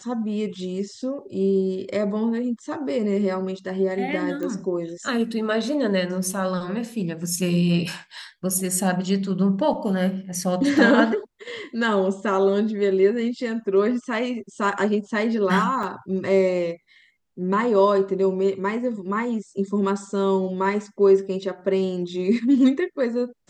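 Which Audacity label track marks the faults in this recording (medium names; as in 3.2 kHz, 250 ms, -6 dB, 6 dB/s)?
4.430000	4.430000	pop -19 dBFS
15.830000	15.830000	dropout 3.3 ms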